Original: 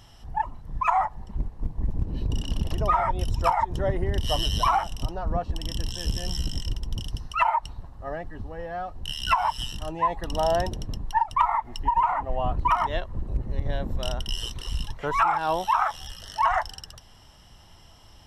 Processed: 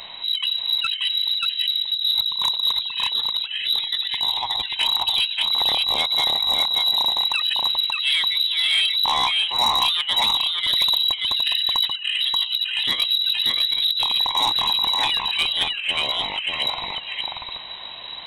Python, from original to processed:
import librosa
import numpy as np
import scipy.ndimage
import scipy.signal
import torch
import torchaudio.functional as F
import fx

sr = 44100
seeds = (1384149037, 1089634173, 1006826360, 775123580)

y = fx.over_compress(x, sr, threshold_db=-30.0, ratio=-0.5)
y = fx.peak_eq(y, sr, hz=1900.0, db=6.5, octaves=1.3)
y = fx.freq_invert(y, sr, carrier_hz=3900)
y = y + 10.0 ** (-3.0 / 20.0) * np.pad(y, (int(583 * sr / 1000.0), 0))[:len(y)]
y = 10.0 ** (-19.5 / 20.0) * np.tanh(y / 10.0 ** (-19.5 / 20.0))
y = y * librosa.db_to_amplitude(7.0)